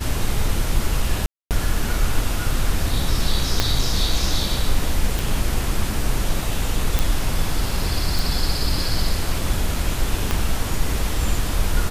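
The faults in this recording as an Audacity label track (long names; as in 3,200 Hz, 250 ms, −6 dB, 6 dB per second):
1.260000	1.510000	drop-out 248 ms
3.600000	3.600000	click −2 dBFS
5.190000	5.190000	click
6.990000	6.990000	click
8.190000	8.190000	click
10.310000	10.310000	click −6 dBFS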